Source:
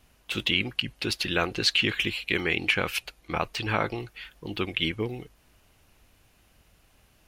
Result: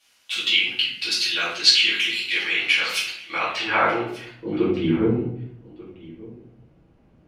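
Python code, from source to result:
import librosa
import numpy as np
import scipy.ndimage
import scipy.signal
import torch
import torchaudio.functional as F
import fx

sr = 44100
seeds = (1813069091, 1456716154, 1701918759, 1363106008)

p1 = fx.filter_sweep_bandpass(x, sr, from_hz=5000.0, to_hz=230.0, start_s=3.04, end_s=4.7, q=0.73)
p2 = p1 + fx.echo_single(p1, sr, ms=1189, db=-20.0, dry=0)
p3 = fx.room_shoebox(p2, sr, seeds[0], volume_m3=110.0, walls='mixed', distance_m=2.4)
y = p3 * 10.0 ** (1.0 / 20.0)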